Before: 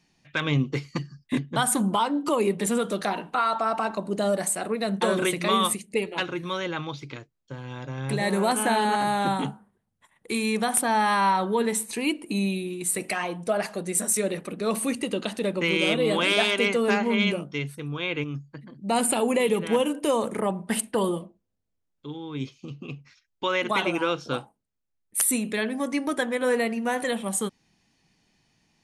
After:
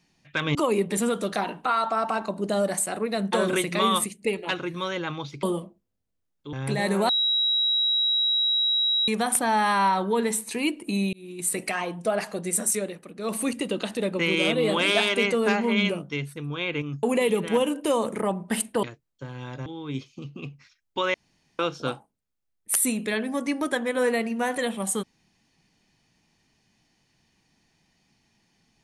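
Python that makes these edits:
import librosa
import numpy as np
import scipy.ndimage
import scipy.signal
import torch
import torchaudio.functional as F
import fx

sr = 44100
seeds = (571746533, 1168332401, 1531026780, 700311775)

y = fx.edit(x, sr, fx.cut(start_s=0.55, length_s=1.69),
    fx.swap(start_s=7.12, length_s=0.83, other_s=21.02, other_length_s=1.1),
    fx.bleep(start_s=8.51, length_s=1.99, hz=3860.0, db=-20.0),
    fx.fade_in_span(start_s=12.55, length_s=0.35),
    fx.fade_down_up(start_s=14.11, length_s=0.73, db=-9.0, fade_s=0.27),
    fx.cut(start_s=18.45, length_s=0.77),
    fx.room_tone_fill(start_s=23.6, length_s=0.45), tone=tone)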